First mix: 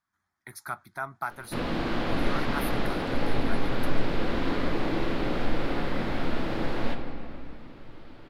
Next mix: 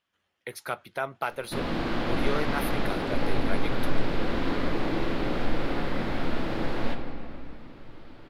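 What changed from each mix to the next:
speech: remove phaser with its sweep stopped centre 1,200 Hz, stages 4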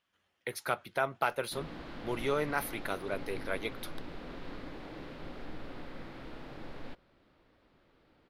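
background −10.5 dB
reverb: off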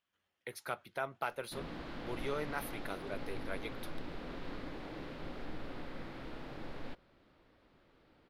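speech −7.0 dB

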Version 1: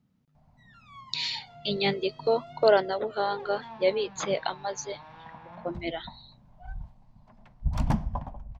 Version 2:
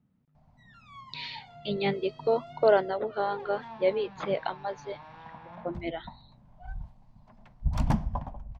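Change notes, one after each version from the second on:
speech: add high-frequency loss of the air 320 metres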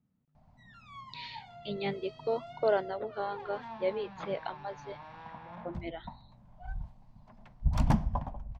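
speech −6.0 dB

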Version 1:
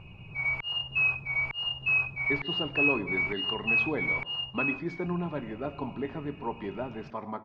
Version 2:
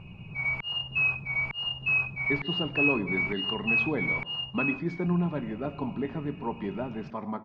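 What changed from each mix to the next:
master: add parametric band 190 Hz +7 dB 0.91 octaves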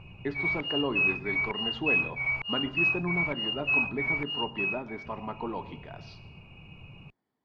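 speech: entry −2.05 s
master: add parametric band 190 Hz −7 dB 0.91 octaves

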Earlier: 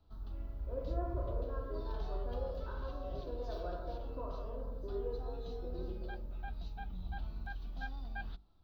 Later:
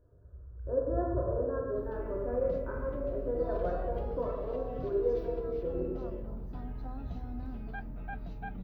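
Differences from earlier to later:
background: entry +1.65 s
master: add octave-band graphic EQ 125/250/500/2,000/4,000 Hz +9/+7/+10/+12/−12 dB

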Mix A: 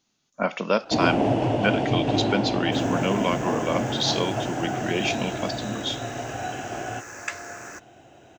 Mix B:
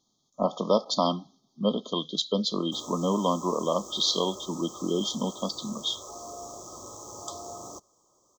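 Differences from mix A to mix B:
first sound: muted
master: add linear-phase brick-wall band-stop 1,300–3,100 Hz

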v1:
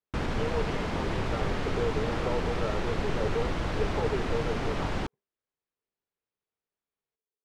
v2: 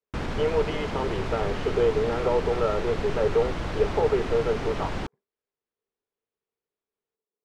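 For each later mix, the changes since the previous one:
speech +8.5 dB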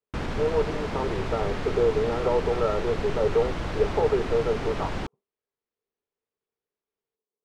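speech: add linear-phase brick-wall low-pass 1,400 Hz

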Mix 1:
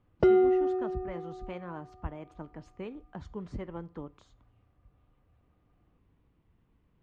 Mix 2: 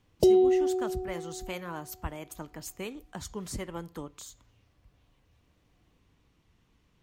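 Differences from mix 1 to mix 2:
background: add Chebyshev band-stop filter 600–4,100 Hz, order 2
master: remove head-to-tape spacing loss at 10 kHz 40 dB

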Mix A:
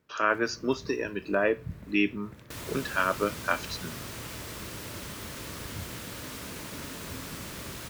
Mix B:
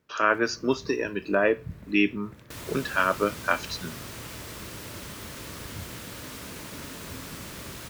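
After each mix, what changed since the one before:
speech +3.0 dB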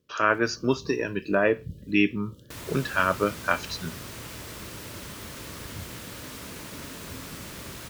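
speech: remove high-pass filter 190 Hz 12 dB per octave
first sound: add linear-phase brick-wall band-stop 600–2,800 Hz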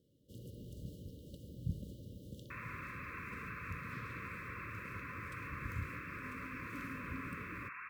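speech: muted
second sound: add linear-phase brick-wall band-pass 990–2,700 Hz
master: add parametric band 770 Hz +9.5 dB 0.24 octaves

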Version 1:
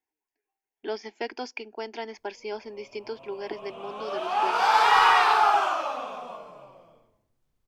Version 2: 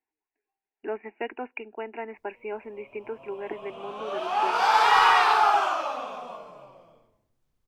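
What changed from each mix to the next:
speech: add linear-phase brick-wall low-pass 2,900 Hz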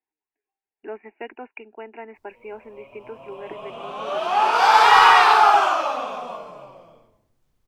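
background +7.5 dB
reverb: off

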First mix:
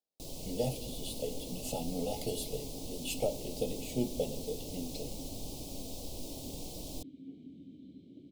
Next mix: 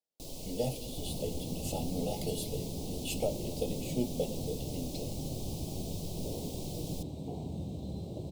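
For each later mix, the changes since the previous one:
second sound: remove formant filter i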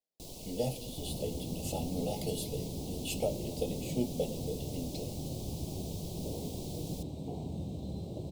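first sound: send off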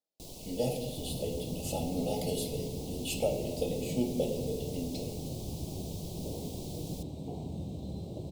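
speech: send +11.5 dB

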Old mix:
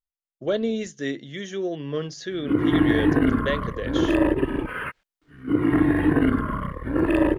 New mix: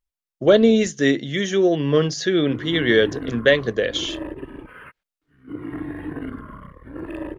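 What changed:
speech +10.5 dB
background −11.5 dB

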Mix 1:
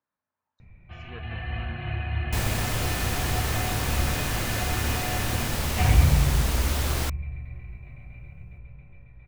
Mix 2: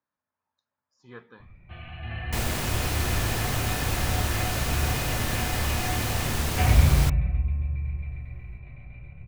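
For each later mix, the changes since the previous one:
first sound: entry +0.80 s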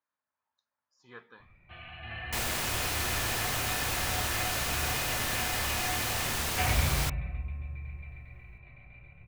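master: add low-shelf EQ 450 Hz −11 dB

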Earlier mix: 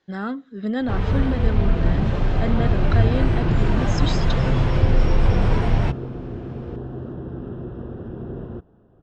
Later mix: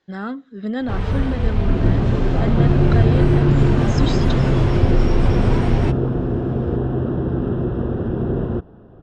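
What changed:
first sound: remove high-frequency loss of the air 51 metres
second sound +11.0 dB

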